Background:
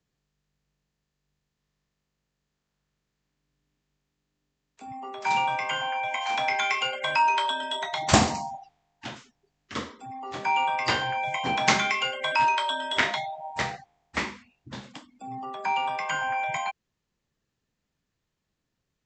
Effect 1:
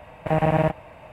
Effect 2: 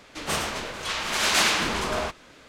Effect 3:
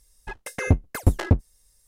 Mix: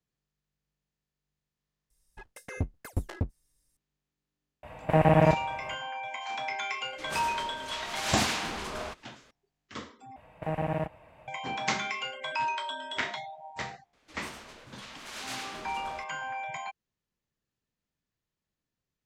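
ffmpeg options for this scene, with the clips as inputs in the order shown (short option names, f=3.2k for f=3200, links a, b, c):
-filter_complex "[1:a]asplit=2[a][b];[2:a]asplit=2[c][d];[0:a]volume=-8dB,asplit=2[e][f];[e]atrim=end=10.164[g];[b]atrim=end=1.12,asetpts=PTS-STARTPTS,volume=-10.5dB[h];[f]atrim=start=11.276[i];[3:a]atrim=end=1.87,asetpts=PTS-STARTPTS,volume=-12.5dB,afade=t=in:d=0.004:c=hsin,afade=t=out:st=1.866:d=0.004:c=hsin,adelay=1900[j];[a]atrim=end=1.12,asetpts=PTS-STARTPTS,volume=-0.5dB,afade=t=in:d=0.004:c=hsin,afade=t=out:st=1.116:d=0.004:c=hsin,adelay=4630[k];[c]atrim=end=2.48,asetpts=PTS-STARTPTS,volume=-9.5dB,afade=t=in:d=0.004:c=hsin,afade=t=out:st=2.476:d=0.004:c=hsin,adelay=6830[l];[d]atrim=end=2.48,asetpts=PTS-STARTPTS,volume=-17.5dB,afade=t=in:d=0.004:c=hsin,afade=t=out:st=2.476:d=0.004:c=hsin,adelay=13930[m];[g][h]acrossfade=d=0.004:c1=hsin:c2=hsin[n];[n][i]acrossfade=d=0.004:c1=hsin:c2=hsin[o];[o][j][k][l][m]amix=inputs=5:normalize=0"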